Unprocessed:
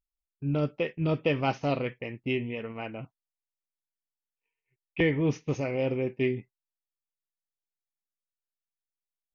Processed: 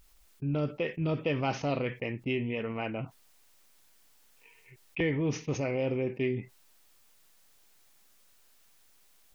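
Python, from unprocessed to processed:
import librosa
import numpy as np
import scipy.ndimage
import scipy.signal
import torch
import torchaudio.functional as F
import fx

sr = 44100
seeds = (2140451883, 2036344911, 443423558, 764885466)

y = fx.env_flatten(x, sr, amount_pct=50)
y = F.gain(torch.from_numpy(y), -5.0).numpy()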